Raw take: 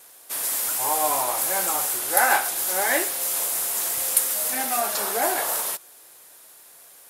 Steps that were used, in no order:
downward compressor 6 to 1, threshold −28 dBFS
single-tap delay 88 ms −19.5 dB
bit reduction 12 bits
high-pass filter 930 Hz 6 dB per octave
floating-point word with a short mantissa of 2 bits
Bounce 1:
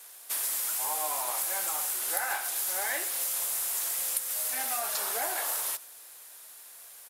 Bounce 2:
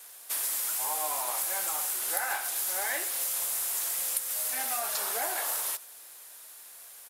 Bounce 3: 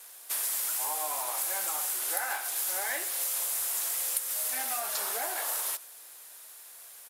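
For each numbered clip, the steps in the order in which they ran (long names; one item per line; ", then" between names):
bit reduction, then high-pass filter, then downward compressor, then floating-point word with a short mantissa, then single-tap delay
high-pass filter, then bit reduction, then downward compressor, then floating-point word with a short mantissa, then single-tap delay
downward compressor, then single-tap delay, then floating-point word with a short mantissa, then high-pass filter, then bit reduction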